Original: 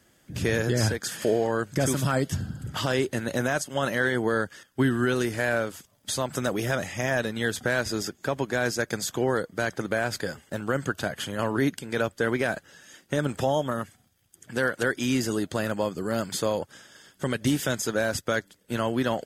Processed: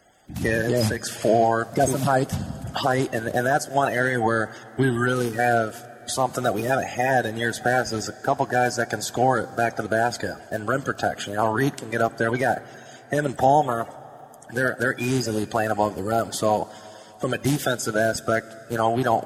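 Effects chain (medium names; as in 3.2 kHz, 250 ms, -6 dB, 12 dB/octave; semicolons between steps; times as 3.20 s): coarse spectral quantiser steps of 30 dB; peaking EQ 740 Hz +12 dB 0.48 oct; plate-style reverb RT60 3.9 s, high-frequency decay 0.95×, DRR 18 dB; trim +2 dB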